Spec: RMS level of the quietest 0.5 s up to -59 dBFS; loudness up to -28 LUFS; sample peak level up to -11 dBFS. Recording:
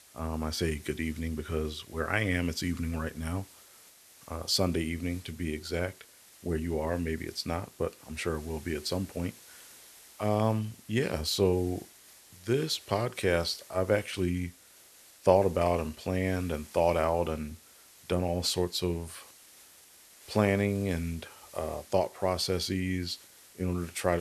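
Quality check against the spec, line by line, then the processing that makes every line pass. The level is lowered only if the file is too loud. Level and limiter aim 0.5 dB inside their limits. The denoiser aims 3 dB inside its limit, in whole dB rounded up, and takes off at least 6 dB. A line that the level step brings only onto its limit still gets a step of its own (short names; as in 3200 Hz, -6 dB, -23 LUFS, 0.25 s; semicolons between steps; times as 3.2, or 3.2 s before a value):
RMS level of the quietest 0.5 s -56 dBFS: fail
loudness -31.0 LUFS: OK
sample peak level -7.5 dBFS: fail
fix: denoiser 6 dB, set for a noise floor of -56 dBFS; limiter -11.5 dBFS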